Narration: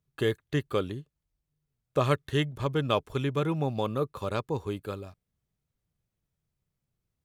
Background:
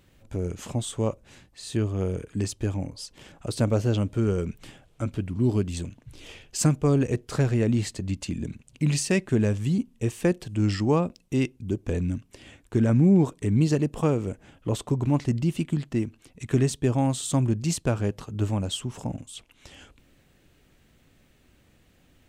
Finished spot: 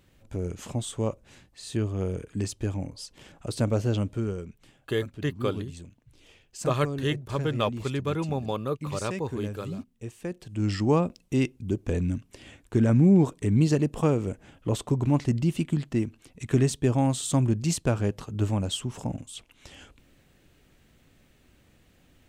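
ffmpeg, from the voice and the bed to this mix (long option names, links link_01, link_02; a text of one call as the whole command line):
ffmpeg -i stem1.wav -i stem2.wav -filter_complex "[0:a]adelay=4700,volume=-0.5dB[link_01];[1:a]volume=9.5dB,afade=type=out:start_time=4.02:duration=0.46:silence=0.334965,afade=type=in:start_time=10.3:duration=0.59:silence=0.266073[link_02];[link_01][link_02]amix=inputs=2:normalize=0" out.wav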